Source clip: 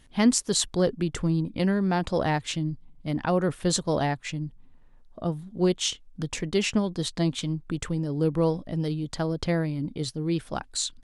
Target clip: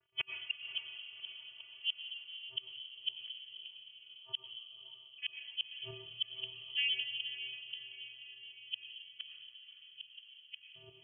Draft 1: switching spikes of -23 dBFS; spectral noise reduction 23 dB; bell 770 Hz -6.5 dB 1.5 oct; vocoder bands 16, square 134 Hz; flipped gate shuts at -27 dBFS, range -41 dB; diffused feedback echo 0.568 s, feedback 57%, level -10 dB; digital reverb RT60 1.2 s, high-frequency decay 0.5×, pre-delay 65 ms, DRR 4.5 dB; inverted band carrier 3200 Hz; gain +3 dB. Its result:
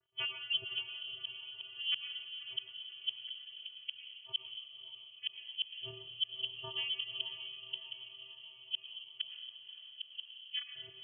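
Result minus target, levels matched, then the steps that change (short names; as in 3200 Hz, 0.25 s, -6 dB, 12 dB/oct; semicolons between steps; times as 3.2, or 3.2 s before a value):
1000 Hz band +6.0 dB
change: bell 770 Hz +4 dB 1.5 oct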